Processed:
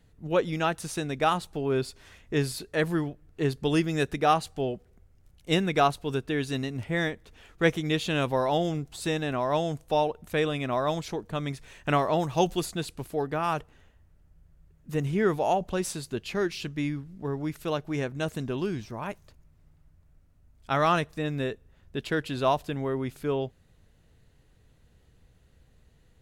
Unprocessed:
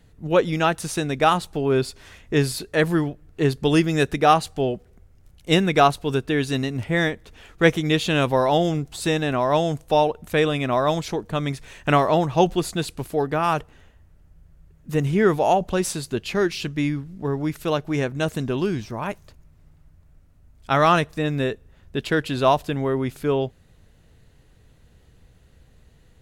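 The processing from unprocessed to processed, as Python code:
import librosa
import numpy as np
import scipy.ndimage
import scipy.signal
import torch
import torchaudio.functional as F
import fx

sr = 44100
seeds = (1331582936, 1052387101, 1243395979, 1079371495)

y = fx.high_shelf(x, sr, hz=fx.line((12.18, 5700.0), (12.64, 3800.0)), db=10.0, at=(12.18, 12.64), fade=0.02)
y = y * librosa.db_to_amplitude(-6.5)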